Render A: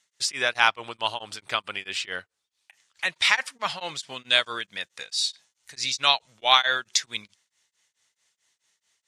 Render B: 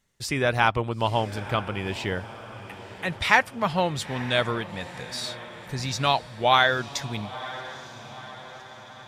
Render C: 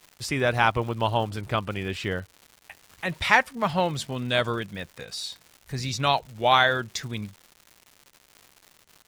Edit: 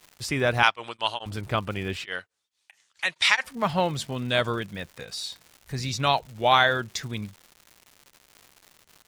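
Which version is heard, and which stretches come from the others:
C
0.63–1.26 s: from A
2.04–3.44 s: from A
not used: B

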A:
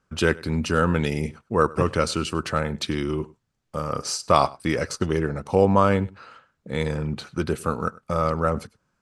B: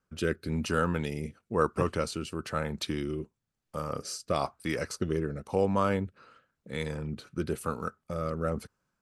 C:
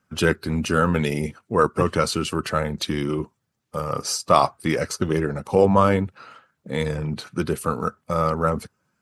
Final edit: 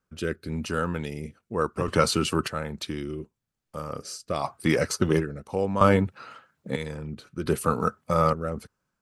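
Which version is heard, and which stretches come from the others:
B
1.88–2.48 s: from C
4.46–5.23 s: from C, crossfade 0.10 s
5.81–6.76 s: from C
7.46–8.33 s: from C
not used: A

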